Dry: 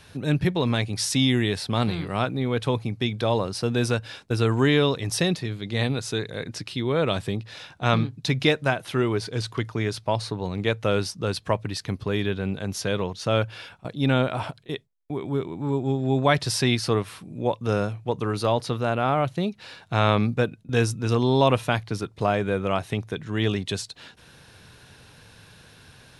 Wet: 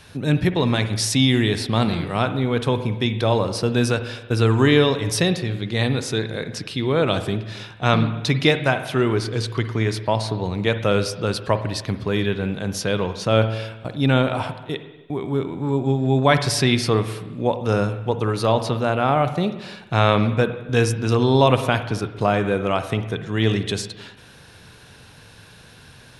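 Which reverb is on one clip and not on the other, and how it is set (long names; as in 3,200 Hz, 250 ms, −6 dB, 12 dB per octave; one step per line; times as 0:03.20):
spring reverb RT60 1.1 s, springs 45/54/58 ms, chirp 65 ms, DRR 9.5 dB
level +3.5 dB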